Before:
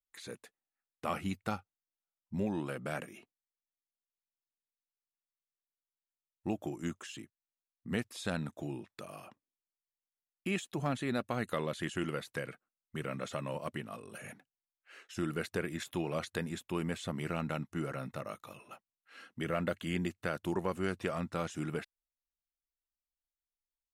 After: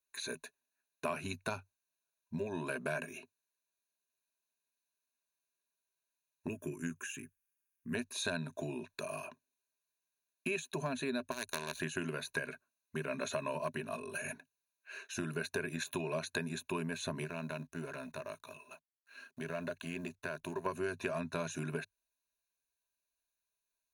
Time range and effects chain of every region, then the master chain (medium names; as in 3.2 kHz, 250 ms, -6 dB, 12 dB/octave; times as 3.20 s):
6.47–7.95 s: treble shelf 8.2 kHz +7 dB + static phaser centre 1.8 kHz, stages 4
11.31–11.80 s: power-law waveshaper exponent 2 + spectrum-flattening compressor 2:1
17.24–20.66 s: companding laws mixed up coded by A + compression 2:1, threshold -45 dBFS
whole clip: rippled EQ curve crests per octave 1.5, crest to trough 15 dB; compression, threshold -35 dBFS; bass shelf 150 Hz -11.5 dB; trim +3.5 dB